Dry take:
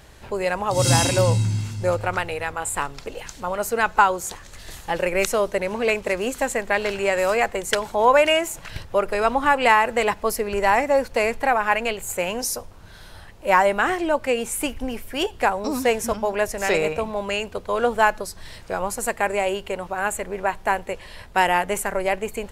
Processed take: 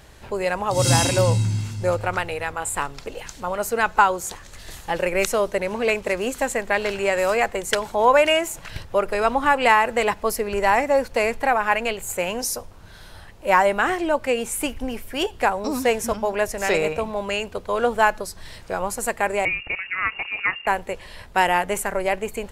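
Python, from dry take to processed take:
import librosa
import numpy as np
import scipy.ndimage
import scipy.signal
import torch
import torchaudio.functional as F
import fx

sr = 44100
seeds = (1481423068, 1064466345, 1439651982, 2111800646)

y = fx.freq_invert(x, sr, carrier_hz=2800, at=(19.45, 20.67))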